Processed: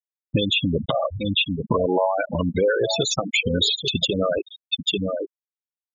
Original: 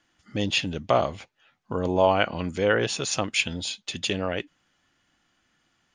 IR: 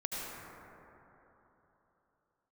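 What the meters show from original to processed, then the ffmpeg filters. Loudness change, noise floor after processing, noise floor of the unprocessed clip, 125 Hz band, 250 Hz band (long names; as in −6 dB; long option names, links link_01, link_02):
+3.0 dB, below −85 dBFS, −71 dBFS, +5.5 dB, +5.5 dB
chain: -filter_complex "[0:a]agate=range=-16dB:threshold=-47dB:ratio=16:detection=peak,aeval=exprs='(mod(2.37*val(0)+1,2)-1)/2.37':channel_layout=same,bandreject=frequency=720:width=19,aecho=1:1:841:0.158,acrossover=split=480|1400|6400[link_01][link_02][link_03][link_04];[link_01]acompressor=threshold=-34dB:ratio=4[link_05];[link_02]acompressor=threshold=-28dB:ratio=4[link_06];[link_03]acompressor=threshold=-34dB:ratio=4[link_07];[link_04]acompressor=threshold=-43dB:ratio=4[link_08];[link_05][link_06][link_07][link_08]amix=inputs=4:normalize=0,asplit=2[link_09][link_10];[link_10]tiltshelf=frequency=1500:gain=-5[link_11];[1:a]atrim=start_sample=2205,afade=type=out:start_time=0.21:duration=0.01,atrim=end_sample=9702,highshelf=frequency=7800:gain=9.5[link_12];[link_11][link_12]afir=irnorm=-1:irlink=0,volume=-11.5dB[link_13];[link_09][link_13]amix=inputs=2:normalize=0,acompressor=threshold=-38dB:ratio=8,equalizer=frequency=3700:width=5.7:gain=7,afftfilt=real='re*gte(hypot(re,im),0.0251)':imag='im*gte(hypot(re,im),0.0251)':win_size=1024:overlap=0.75,alimiter=level_in=31.5dB:limit=-1dB:release=50:level=0:latency=1,volume=-9dB"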